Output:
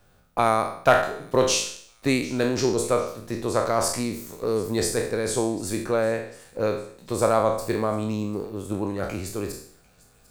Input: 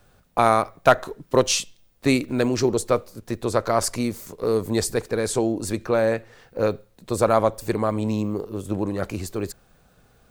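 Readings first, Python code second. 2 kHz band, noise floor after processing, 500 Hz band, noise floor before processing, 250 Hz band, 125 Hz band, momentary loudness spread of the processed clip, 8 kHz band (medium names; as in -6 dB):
-0.5 dB, -58 dBFS, -1.5 dB, -59 dBFS, -2.5 dB, -2.5 dB, 11 LU, 0.0 dB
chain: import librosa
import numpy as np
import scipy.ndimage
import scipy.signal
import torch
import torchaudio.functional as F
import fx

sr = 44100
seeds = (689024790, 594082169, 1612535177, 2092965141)

p1 = fx.spec_trails(x, sr, decay_s=0.59)
p2 = p1 + fx.echo_wet_highpass(p1, sr, ms=747, feedback_pct=53, hz=3100.0, wet_db=-20, dry=0)
y = p2 * 10.0 ** (-3.5 / 20.0)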